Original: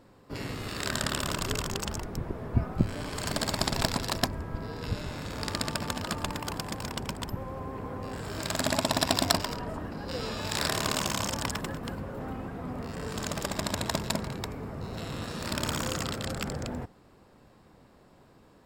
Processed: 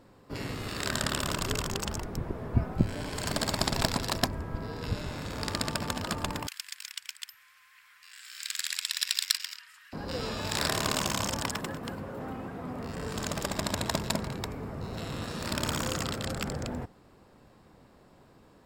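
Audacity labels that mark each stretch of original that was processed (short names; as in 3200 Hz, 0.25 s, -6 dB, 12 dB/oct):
2.630000	3.270000	notch 1200 Hz, Q 9.5
6.470000	9.930000	inverse Chebyshev high-pass stop band from 700 Hz, stop band 50 dB
11.410000	12.820000	HPF 120 Hz 6 dB/oct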